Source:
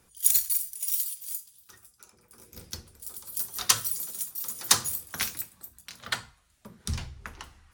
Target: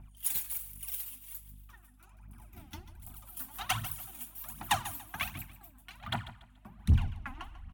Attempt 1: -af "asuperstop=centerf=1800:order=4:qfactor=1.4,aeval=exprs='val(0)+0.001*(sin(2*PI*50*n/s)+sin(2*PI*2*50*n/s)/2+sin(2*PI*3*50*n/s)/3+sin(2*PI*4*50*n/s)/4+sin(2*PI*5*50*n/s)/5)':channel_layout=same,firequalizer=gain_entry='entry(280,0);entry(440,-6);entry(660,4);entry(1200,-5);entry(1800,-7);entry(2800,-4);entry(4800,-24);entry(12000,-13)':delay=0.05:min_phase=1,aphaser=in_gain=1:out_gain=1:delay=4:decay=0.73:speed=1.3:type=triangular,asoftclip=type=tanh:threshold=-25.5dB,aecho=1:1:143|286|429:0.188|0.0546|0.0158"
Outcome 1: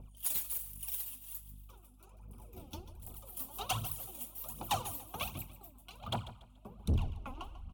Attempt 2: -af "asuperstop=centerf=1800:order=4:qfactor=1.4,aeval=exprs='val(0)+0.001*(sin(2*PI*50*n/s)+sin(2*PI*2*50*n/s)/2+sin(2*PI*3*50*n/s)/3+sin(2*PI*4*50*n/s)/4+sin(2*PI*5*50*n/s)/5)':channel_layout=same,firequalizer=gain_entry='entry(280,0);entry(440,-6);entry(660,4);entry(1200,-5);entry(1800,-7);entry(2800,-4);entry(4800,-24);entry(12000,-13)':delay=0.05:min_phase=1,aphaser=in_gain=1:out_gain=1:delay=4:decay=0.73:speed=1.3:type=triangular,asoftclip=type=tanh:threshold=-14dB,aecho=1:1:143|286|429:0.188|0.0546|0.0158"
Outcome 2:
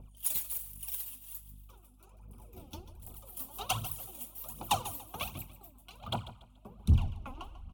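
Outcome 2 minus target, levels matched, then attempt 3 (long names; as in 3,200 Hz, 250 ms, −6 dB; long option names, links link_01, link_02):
2,000 Hz band −7.0 dB
-af "asuperstop=centerf=470:order=4:qfactor=1.4,aeval=exprs='val(0)+0.001*(sin(2*PI*50*n/s)+sin(2*PI*2*50*n/s)/2+sin(2*PI*3*50*n/s)/3+sin(2*PI*4*50*n/s)/4+sin(2*PI*5*50*n/s)/5)':channel_layout=same,firequalizer=gain_entry='entry(280,0);entry(440,-6);entry(660,4);entry(1200,-5);entry(1800,-7);entry(2800,-4);entry(4800,-24);entry(12000,-13)':delay=0.05:min_phase=1,aphaser=in_gain=1:out_gain=1:delay=4:decay=0.73:speed=1.3:type=triangular,asoftclip=type=tanh:threshold=-14dB,aecho=1:1:143|286|429:0.188|0.0546|0.0158"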